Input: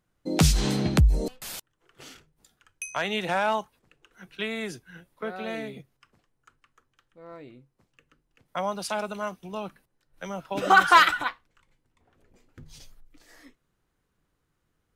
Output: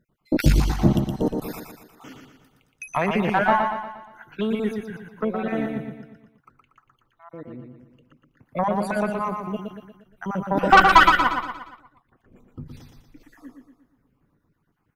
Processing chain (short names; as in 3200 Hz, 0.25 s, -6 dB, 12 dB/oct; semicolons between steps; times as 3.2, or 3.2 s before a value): random spectral dropouts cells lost 52%; graphic EQ 125/250/1000/4000/8000 Hz +6/+7/+5/-7/-11 dB; tube stage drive 13 dB, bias 0.6; feedback echo 0.118 s, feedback 48%, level -5 dB; gain +7 dB